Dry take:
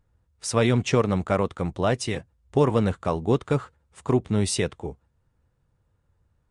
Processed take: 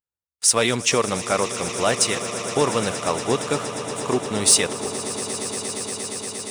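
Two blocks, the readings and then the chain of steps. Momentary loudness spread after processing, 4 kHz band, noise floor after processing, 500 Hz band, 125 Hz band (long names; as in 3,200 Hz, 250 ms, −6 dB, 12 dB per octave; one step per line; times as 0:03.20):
10 LU, +11.0 dB, below −85 dBFS, +1.5 dB, −6.5 dB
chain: RIAA equalisation recording
noise gate with hold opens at −45 dBFS
leveller curve on the samples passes 1
echo that builds up and dies away 117 ms, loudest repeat 8, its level −16.5 dB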